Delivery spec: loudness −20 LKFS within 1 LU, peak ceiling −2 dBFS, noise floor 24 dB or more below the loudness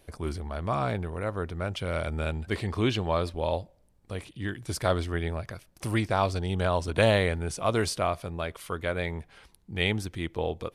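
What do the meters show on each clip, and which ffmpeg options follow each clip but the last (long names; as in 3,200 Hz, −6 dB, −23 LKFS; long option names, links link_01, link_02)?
integrated loudness −29.5 LKFS; sample peak −10.0 dBFS; target loudness −20.0 LKFS
→ -af "volume=9.5dB,alimiter=limit=-2dB:level=0:latency=1"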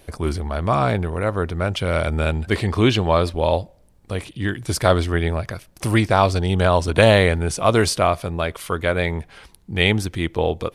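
integrated loudness −20.0 LKFS; sample peak −2.0 dBFS; background noise floor −53 dBFS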